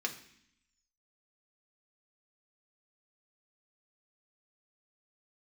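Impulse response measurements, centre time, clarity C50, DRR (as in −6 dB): 12 ms, 12.0 dB, 2.0 dB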